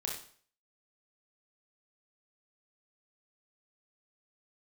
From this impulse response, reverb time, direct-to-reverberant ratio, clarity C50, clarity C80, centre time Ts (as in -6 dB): 0.50 s, -1.5 dB, 3.5 dB, 8.5 dB, 35 ms